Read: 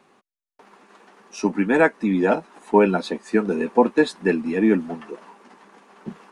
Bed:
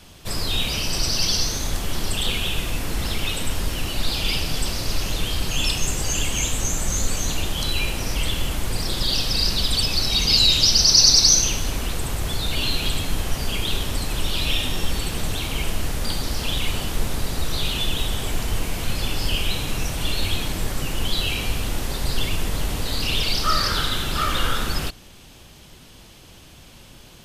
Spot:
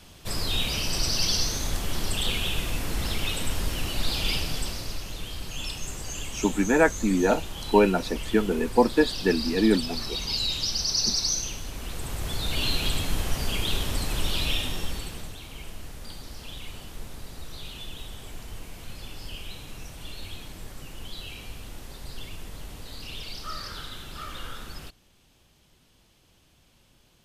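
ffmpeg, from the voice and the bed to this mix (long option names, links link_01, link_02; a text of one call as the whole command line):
ffmpeg -i stem1.wav -i stem2.wav -filter_complex "[0:a]adelay=5000,volume=-3dB[link_01];[1:a]volume=5dB,afade=type=out:start_time=4.31:duration=0.72:silence=0.398107,afade=type=in:start_time=11.72:duration=0.95:silence=0.375837,afade=type=out:start_time=14.32:duration=1.03:silence=0.237137[link_02];[link_01][link_02]amix=inputs=2:normalize=0" out.wav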